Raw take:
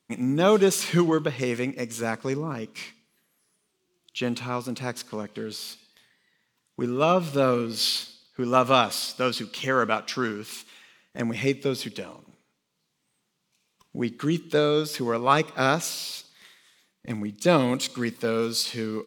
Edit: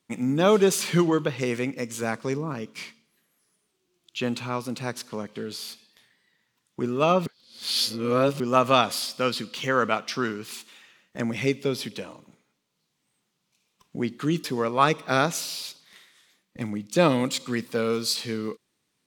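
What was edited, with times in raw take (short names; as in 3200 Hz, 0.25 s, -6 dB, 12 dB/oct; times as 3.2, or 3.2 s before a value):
7.26–8.4 reverse
14.44–14.93 cut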